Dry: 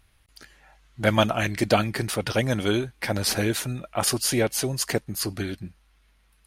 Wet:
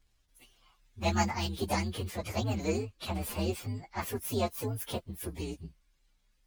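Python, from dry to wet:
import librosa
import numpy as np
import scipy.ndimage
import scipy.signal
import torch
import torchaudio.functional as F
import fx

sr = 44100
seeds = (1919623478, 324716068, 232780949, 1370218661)

y = fx.partial_stretch(x, sr, pct=128)
y = fx.high_shelf(y, sr, hz=7000.0, db=-4.5, at=(2.0, 4.25))
y = F.gain(torch.from_numpy(y), -5.0).numpy()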